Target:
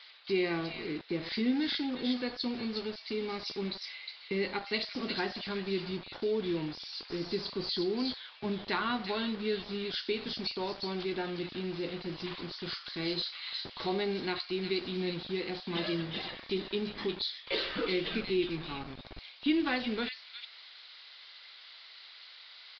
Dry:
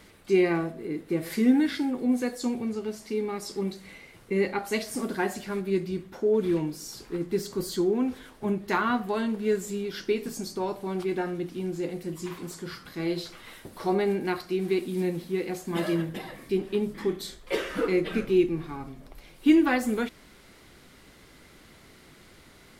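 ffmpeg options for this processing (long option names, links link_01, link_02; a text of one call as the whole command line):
ffmpeg -i in.wav -filter_complex "[0:a]equalizer=frequency=3900:width_type=o:width=1.2:gain=13,acompressor=threshold=-34dB:ratio=1.5,acrossover=split=710|2000[link_01][link_02][link_03];[link_01]acrusher=bits=6:mix=0:aa=0.000001[link_04];[link_03]aecho=1:1:360:0.708[link_05];[link_04][link_02][link_05]amix=inputs=3:normalize=0,aresample=11025,aresample=44100,volume=-3dB" out.wav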